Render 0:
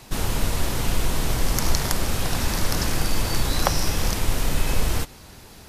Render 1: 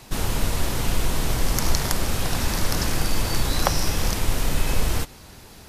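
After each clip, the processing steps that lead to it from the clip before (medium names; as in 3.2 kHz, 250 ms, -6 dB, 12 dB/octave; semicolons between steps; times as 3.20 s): no audible change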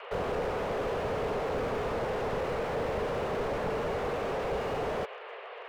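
mistuned SSB +280 Hz 150–2700 Hz; slew-rate limiter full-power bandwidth 11 Hz; trim +5.5 dB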